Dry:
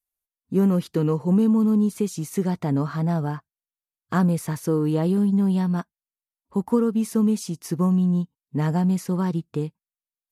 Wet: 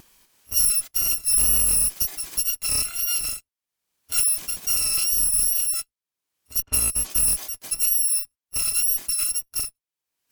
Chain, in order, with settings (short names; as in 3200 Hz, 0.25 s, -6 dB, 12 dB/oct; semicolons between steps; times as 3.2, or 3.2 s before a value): FFT order left unsorted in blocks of 256 samples; added harmonics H 4 -22 dB, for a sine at -9.5 dBFS; upward compressor, threshold -33 dBFS; wow and flutter 46 cents; 6.62–7.1 low-pass opened by the level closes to 1400 Hz, open at -19 dBFS